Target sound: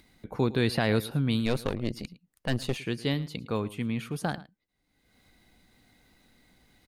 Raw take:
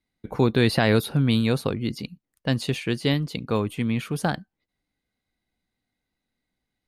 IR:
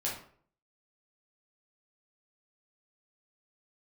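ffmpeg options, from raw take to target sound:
-filter_complex "[0:a]aecho=1:1:110:0.119,acompressor=mode=upward:threshold=-35dB:ratio=2.5,asplit=3[link_01][link_02][link_03];[link_01]afade=type=out:start_time=1.45:duration=0.02[link_04];[link_02]aeval=exprs='0.376*(cos(1*acos(clip(val(0)/0.376,-1,1)))-cos(1*PI/2))+0.0668*(cos(4*acos(clip(val(0)/0.376,-1,1)))-cos(4*PI/2))+0.0266*(cos(8*acos(clip(val(0)/0.376,-1,1)))-cos(8*PI/2))':channel_layout=same,afade=type=in:start_time=1.45:duration=0.02,afade=type=out:start_time=2.76:duration=0.02[link_05];[link_03]afade=type=in:start_time=2.76:duration=0.02[link_06];[link_04][link_05][link_06]amix=inputs=3:normalize=0,volume=-6dB"

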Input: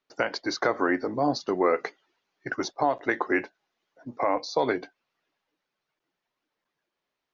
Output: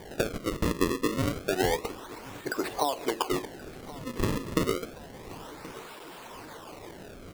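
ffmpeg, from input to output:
ffmpeg -i in.wav -af "aeval=exprs='val(0)+0.5*0.0126*sgn(val(0))':channel_layout=same,acompressor=threshold=-26dB:ratio=4,highpass=170,equalizer=frequency=450:width_type=q:width=4:gain=5,equalizer=frequency=970:width_type=q:width=4:gain=5,equalizer=frequency=1900:width_type=q:width=4:gain=-8,lowpass=frequency=5500:width=0.5412,lowpass=frequency=5500:width=1.3066,acrusher=samples=33:mix=1:aa=0.000001:lfo=1:lforange=52.8:lforate=0.29,aecho=1:1:1077|2154|3231:0.119|0.0487|0.02" out.wav

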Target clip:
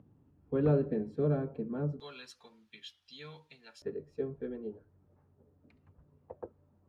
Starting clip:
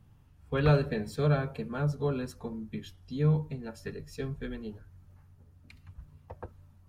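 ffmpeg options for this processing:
ffmpeg -i in.wav -af "acompressor=mode=upward:threshold=-50dB:ratio=2.5,asetnsamples=nb_out_samples=441:pad=0,asendcmd='2 bandpass f 3500;3.82 bandpass f 420',bandpass=frequency=310:width_type=q:width=1.6:csg=0,volume=3.5dB" out.wav

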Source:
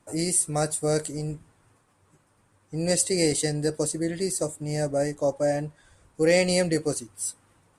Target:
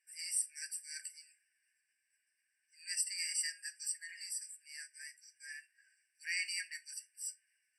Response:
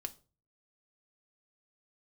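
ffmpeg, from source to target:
-filter_complex "[0:a]asettb=1/sr,asplit=3[link_01][link_02][link_03];[link_01]atrim=end=3.284[link_04];[link_02]atrim=start=3.28:end=4.21,asetpts=PTS-STARTPTS,afade=type=in:duration=0.004:curve=qsin,afade=type=out:start_time=0.926:duration=0.004:curve=qsin,aecho=1:1:4.9:0.93,atrim=end_sample=41013[link_05];[link_03]atrim=start=4.206[link_06];[link_04][link_05]acrossfade=duration=0.004:curve1=hsin:curve2=qsin[link_07];[link_07][link_06]acrossfade=duration=0.004:curve1=qsin:curve2=hsin[link_08];[1:a]atrim=start_sample=2205,asetrate=70560,aresample=44100[link_09];[link_08][link_09]afir=irnorm=-1:irlink=0,afftfilt=real='re*eq(mod(floor(b*sr/1024/1500),2),1)':imag='im*eq(mod(floor(b*sr/1024/1500),2),1)':win_size=1024:overlap=0.75,volume=-2dB"

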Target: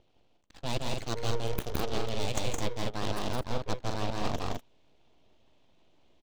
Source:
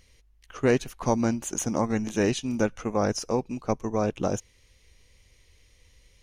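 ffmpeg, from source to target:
ffmpeg -i in.wav -filter_complex "[0:a]highpass=frequency=140:width=0.5412,highpass=frequency=140:width=1.3066,adynamicsmooth=sensitivity=4:basefreq=550,highshelf=frequency=2400:width_type=q:width=3:gain=10,areverse,acompressor=threshold=-37dB:ratio=5,areverse,aeval=exprs='abs(val(0))':channel_layout=same,equalizer=frequency=11000:width_type=o:width=0.53:gain=-7,asplit=2[link_01][link_02];[link_02]aecho=0:1:166.2|209.9:0.794|0.562[link_03];[link_01][link_03]amix=inputs=2:normalize=0,volume=7.5dB" out.wav

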